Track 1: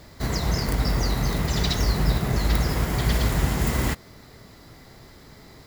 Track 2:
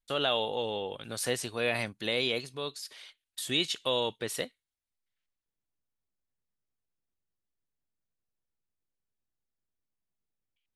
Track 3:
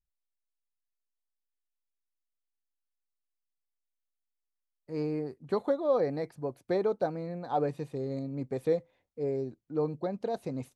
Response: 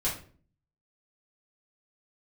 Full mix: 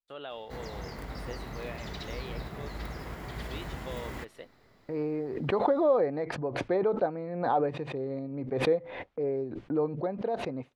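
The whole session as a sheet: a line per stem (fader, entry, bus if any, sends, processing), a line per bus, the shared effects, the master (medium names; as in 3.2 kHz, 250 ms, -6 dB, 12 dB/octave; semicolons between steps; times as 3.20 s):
-12.0 dB, 0.30 s, no send, none
-10.0 dB, 0.00 s, no send, treble shelf 2.2 kHz -8 dB
+2.0 dB, 0.00 s, no send, gate -59 dBFS, range -19 dB; low-pass 3.4 kHz 12 dB/octave; swell ahead of each attack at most 43 dB/s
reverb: none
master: tone controls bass -6 dB, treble -10 dB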